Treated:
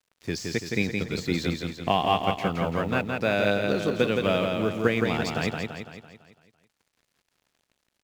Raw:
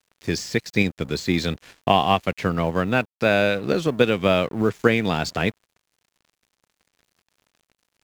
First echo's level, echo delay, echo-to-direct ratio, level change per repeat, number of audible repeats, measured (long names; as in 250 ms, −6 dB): −4.0 dB, 168 ms, −2.5 dB, −6.0 dB, 6